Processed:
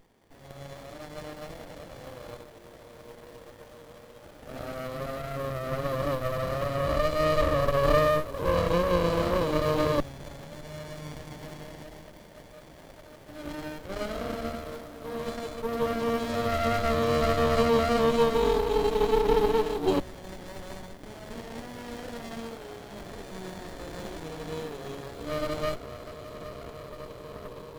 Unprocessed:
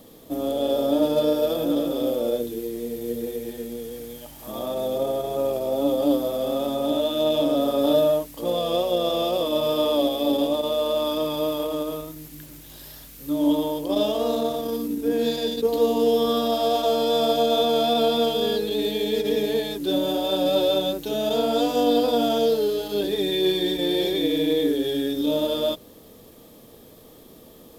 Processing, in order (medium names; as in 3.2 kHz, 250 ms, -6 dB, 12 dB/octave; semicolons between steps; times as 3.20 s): echo that smears into a reverb 621 ms, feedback 79%, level -15 dB; LFO high-pass saw down 0.1 Hz 370–1800 Hz; sliding maximum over 33 samples; trim -4.5 dB